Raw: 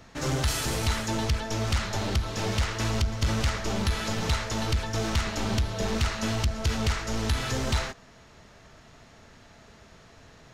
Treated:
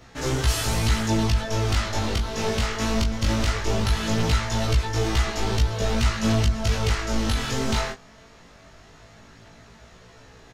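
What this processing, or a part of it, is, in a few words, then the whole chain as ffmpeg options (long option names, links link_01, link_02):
double-tracked vocal: -filter_complex "[0:a]asplit=2[link_01][link_02];[link_02]adelay=18,volume=-4dB[link_03];[link_01][link_03]amix=inputs=2:normalize=0,flanger=delay=15.5:depth=7.2:speed=0.19,volume=4.5dB"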